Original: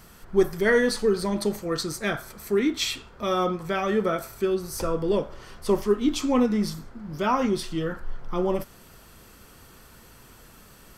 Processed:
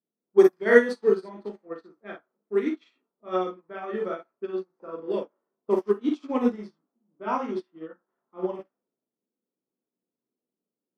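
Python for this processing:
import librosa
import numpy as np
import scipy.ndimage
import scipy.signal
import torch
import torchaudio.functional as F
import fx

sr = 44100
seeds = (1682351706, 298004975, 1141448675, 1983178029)

y = fx.env_lowpass(x, sr, base_hz=350.0, full_db=-17.0)
y = scipy.signal.sosfilt(scipy.signal.butter(4, 230.0, 'highpass', fs=sr, output='sos'), y)
y = fx.high_shelf(y, sr, hz=2700.0, db=-8.0)
y = fx.room_early_taps(y, sr, ms=(38, 54), db=(-3.5, -5.0))
y = fx.upward_expand(y, sr, threshold_db=-38.0, expansion=2.5)
y = y * librosa.db_to_amplitude(4.5)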